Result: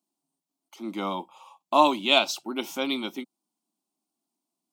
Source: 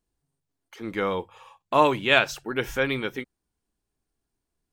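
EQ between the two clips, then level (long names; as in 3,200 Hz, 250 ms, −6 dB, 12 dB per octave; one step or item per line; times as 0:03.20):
high-pass filter 170 Hz 24 dB per octave
dynamic equaliser 4,000 Hz, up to +7 dB, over −41 dBFS, Q 1.5
phaser with its sweep stopped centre 460 Hz, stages 6
+2.0 dB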